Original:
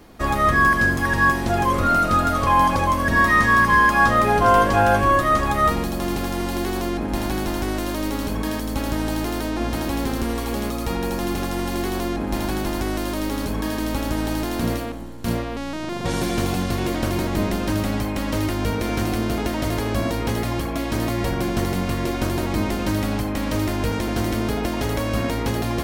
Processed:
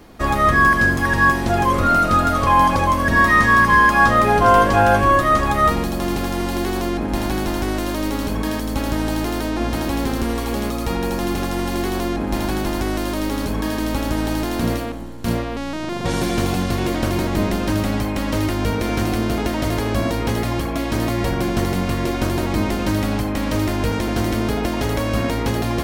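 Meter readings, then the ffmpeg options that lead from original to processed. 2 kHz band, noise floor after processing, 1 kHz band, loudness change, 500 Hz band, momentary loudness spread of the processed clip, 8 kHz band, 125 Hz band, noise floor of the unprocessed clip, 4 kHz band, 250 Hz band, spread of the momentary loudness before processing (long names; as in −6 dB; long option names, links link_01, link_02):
+2.5 dB, −24 dBFS, +2.5 dB, +2.5 dB, +2.5 dB, 10 LU, +1.5 dB, +2.5 dB, −27 dBFS, +2.0 dB, +2.5 dB, 10 LU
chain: -af "equalizer=frequency=14000:width=0.43:gain=-2,volume=2.5dB"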